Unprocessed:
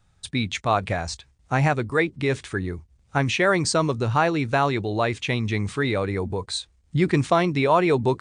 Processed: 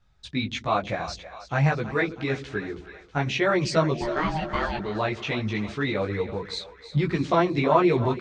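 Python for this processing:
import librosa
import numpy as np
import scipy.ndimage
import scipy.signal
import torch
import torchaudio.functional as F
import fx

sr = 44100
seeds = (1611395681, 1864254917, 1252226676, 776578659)

y = scipy.signal.sosfilt(scipy.signal.butter(4, 5900.0, 'lowpass', fs=sr, output='sos'), x)
y = fx.ring_mod(y, sr, carrier_hz=470.0, at=(3.93, 4.77), fade=0.02)
y = fx.chorus_voices(y, sr, voices=6, hz=1.1, base_ms=17, depth_ms=3.2, mix_pct=50)
y = fx.echo_split(y, sr, split_hz=470.0, low_ms=89, high_ms=322, feedback_pct=52, wet_db=-13)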